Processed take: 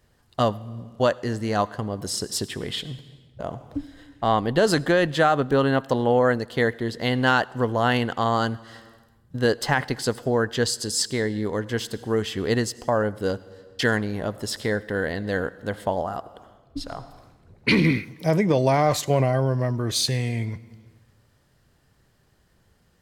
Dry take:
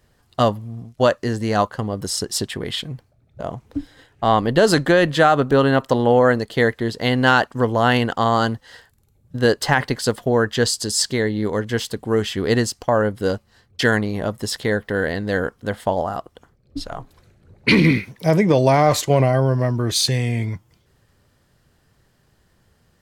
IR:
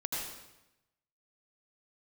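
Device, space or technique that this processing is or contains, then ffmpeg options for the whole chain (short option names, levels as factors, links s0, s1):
compressed reverb return: -filter_complex "[0:a]asplit=2[s0][s1];[1:a]atrim=start_sample=2205[s2];[s1][s2]afir=irnorm=-1:irlink=0,acompressor=threshold=0.0501:ratio=10,volume=0.335[s3];[s0][s3]amix=inputs=2:normalize=0,volume=0.562"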